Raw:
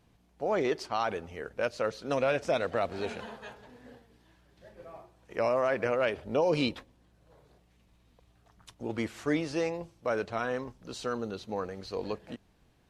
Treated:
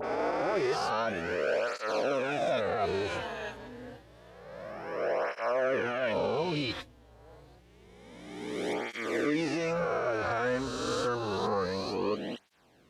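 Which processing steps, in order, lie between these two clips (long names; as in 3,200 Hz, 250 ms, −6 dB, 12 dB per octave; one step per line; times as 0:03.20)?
peak hold with a rise ahead of every peak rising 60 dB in 1.96 s
high-shelf EQ 6,500 Hz −4.5 dB
all-pass dispersion highs, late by 43 ms, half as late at 2,500 Hz
brickwall limiter −25.5 dBFS, peak gain reduction 12.5 dB
through-zero flanger with one copy inverted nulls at 0.28 Hz, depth 6 ms
level +6 dB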